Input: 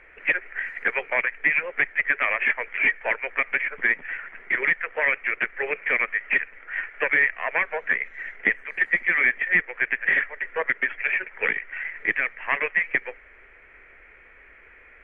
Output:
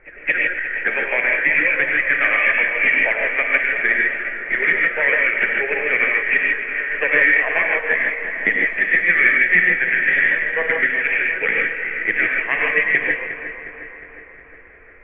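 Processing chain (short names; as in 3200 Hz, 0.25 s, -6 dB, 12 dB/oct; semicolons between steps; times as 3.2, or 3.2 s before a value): regenerating reverse delay 0.18 s, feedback 79%, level -11 dB; bell 1000 Hz -7 dB 0.6 oct; pre-echo 0.22 s -17 dB; non-linear reverb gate 0.18 s rising, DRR -0.5 dB; low-pass opened by the level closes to 1300 Hz, open at -13.5 dBFS; gain +3.5 dB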